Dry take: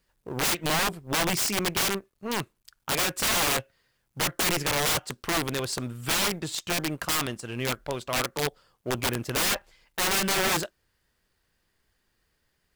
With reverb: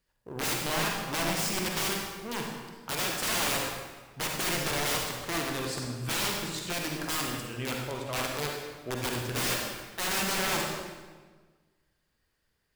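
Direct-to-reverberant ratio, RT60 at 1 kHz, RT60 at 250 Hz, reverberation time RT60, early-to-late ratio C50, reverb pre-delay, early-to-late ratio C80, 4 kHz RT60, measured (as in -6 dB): 0.0 dB, 1.4 s, 1.7 s, 1.5 s, 0.5 dB, 39 ms, 3.0 dB, 1.1 s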